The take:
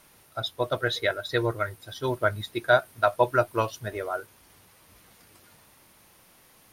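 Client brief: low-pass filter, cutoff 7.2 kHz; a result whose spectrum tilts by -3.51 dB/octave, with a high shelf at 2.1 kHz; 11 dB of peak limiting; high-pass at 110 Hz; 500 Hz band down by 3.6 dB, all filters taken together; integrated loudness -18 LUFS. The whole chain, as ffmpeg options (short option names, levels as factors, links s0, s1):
-af "highpass=110,lowpass=7200,equalizer=f=500:t=o:g=-5.5,highshelf=f=2100:g=7.5,volume=4.47,alimiter=limit=0.562:level=0:latency=1"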